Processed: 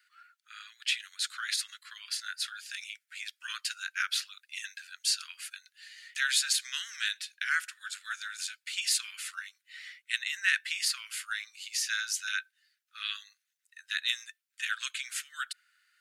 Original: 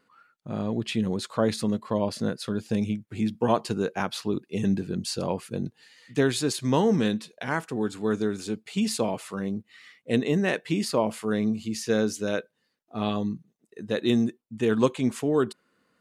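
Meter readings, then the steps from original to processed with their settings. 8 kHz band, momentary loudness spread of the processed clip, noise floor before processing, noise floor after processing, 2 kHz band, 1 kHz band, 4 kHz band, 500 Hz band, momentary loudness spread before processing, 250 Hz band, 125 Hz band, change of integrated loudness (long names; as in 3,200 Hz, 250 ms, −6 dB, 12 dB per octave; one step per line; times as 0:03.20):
+4.5 dB, 15 LU, −74 dBFS, −83 dBFS, +4.0 dB, −12.5 dB, +4.5 dB, below −40 dB, 9 LU, below −40 dB, below −40 dB, −5.5 dB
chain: Butterworth high-pass 1,400 Hz 72 dB per octave
level +4.5 dB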